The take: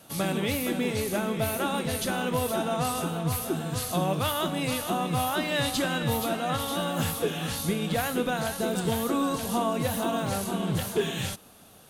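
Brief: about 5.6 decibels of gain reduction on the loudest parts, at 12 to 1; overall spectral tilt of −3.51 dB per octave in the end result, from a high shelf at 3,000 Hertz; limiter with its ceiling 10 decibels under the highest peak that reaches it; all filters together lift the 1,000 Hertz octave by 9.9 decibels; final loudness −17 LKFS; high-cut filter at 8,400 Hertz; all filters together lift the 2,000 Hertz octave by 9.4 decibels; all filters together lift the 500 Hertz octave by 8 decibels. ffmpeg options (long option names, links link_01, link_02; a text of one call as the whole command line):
ffmpeg -i in.wav -af "lowpass=8400,equalizer=frequency=500:width_type=o:gain=6.5,equalizer=frequency=1000:width_type=o:gain=8.5,equalizer=frequency=2000:width_type=o:gain=6,highshelf=frequency=3000:gain=8.5,acompressor=threshold=-20dB:ratio=12,volume=13dB,alimiter=limit=-8.5dB:level=0:latency=1" out.wav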